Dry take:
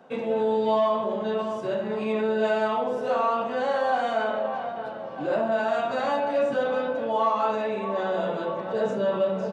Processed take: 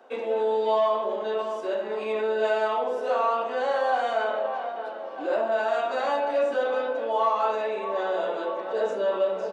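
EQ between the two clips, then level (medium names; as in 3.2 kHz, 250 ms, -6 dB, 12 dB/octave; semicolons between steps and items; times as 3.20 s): high-pass 310 Hz 24 dB/octave; 0.0 dB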